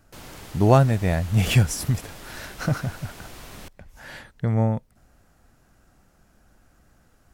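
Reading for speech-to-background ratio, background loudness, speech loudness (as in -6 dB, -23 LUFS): 19.5 dB, -42.0 LUFS, -22.5 LUFS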